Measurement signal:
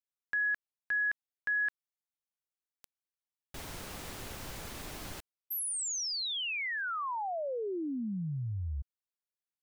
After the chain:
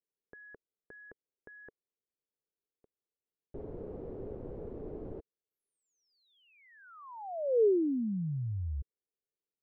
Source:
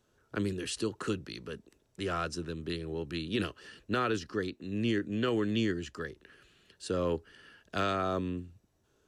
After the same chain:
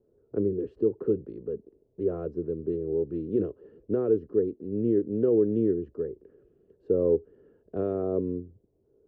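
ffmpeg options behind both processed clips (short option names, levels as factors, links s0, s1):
-af "lowpass=f=440:t=q:w=3.9"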